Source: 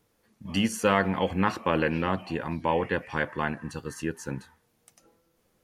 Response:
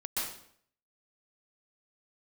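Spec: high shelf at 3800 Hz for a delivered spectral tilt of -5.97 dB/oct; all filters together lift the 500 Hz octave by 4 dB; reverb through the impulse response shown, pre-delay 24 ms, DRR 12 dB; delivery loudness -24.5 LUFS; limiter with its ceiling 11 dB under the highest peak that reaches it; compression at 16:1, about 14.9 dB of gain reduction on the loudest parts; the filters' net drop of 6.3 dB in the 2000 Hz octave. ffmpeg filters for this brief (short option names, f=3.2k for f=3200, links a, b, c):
-filter_complex "[0:a]equalizer=f=500:t=o:g=5,equalizer=f=2k:t=o:g=-7.5,highshelf=f=3.8k:g=-6,acompressor=threshold=-30dB:ratio=16,alimiter=level_in=4dB:limit=-24dB:level=0:latency=1,volume=-4dB,asplit=2[a][b];[1:a]atrim=start_sample=2205,adelay=24[c];[b][c]afir=irnorm=-1:irlink=0,volume=-17dB[d];[a][d]amix=inputs=2:normalize=0,volume=15.5dB"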